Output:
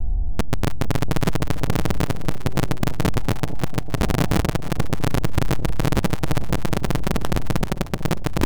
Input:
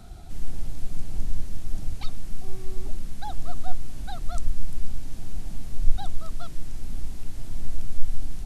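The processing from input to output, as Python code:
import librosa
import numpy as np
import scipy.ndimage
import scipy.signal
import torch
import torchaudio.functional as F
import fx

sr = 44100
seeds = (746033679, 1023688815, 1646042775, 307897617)

p1 = fx.spec_steps(x, sr, hold_ms=400)
p2 = scipy.signal.sosfilt(scipy.signal.butter(12, 1000.0, 'lowpass', fs=sr, output='sos'), p1)
p3 = fx.low_shelf(p2, sr, hz=160.0, db=10.0)
p4 = fx.over_compress(p3, sr, threshold_db=-13.0, ratio=-0.5)
p5 = p3 + F.gain(torch.from_numpy(p4), -1.0).numpy()
p6 = (np.mod(10.0 ** (9.0 / 20.0) * p5 + 1.0, 2.0) - 1.0) / 10.0 ** (9.0 / 20.0)
p7 = fx.vibrato(p6, sr, rate_hz=1.7, depth_cents=29.0)
p8 = p7 + fx.echo_split(p7, sr, split_hz=710.0, low_ms=449, high_ms=308, feedback_pct=52, wet_db=-12.5, dry=0)
y = F.gain(torch.from_numpy(p8), -3.5).numpy()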